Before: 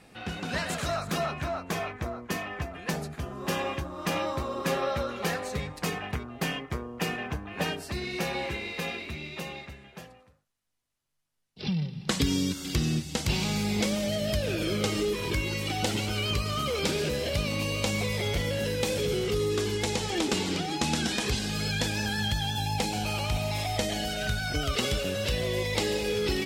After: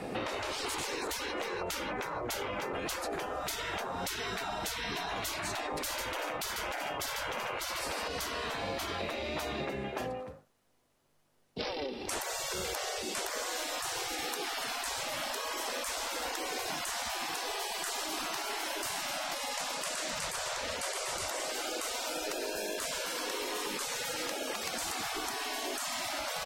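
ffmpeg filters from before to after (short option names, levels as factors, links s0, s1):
-filter_complex "[0:a]asplit=3[s0][s1][s2];[s0]afade=t=out:st=5.77:d=0.02[s3];[s1]aecho=1:1:56|66|84|145|382:0.376|0.237|0.126|0.501|0.211,afade=t=in:st=5.77:d=0.02,afade=t=out:st=8.07:d=0.02[s4];[s2]afade=t=in:st=8.07:d=0.02[s5];[s3][s4][s5]amix=inputs=3:normalize=0,afftfilt=real='re*lt(hypot(re,im),0.0282)':imag='im*lt(hypot(re,im),0.0282)':win_size=1024:overlap=0.75,equalizer=f=470:t=o:w=2.8:g=13,acrossover=split=180[s6][s7];[s7]acompressor=threshold=0.01:ratio=6[s8];[s6][s8]amix=inputs=2:normalize=0,volume=2.24"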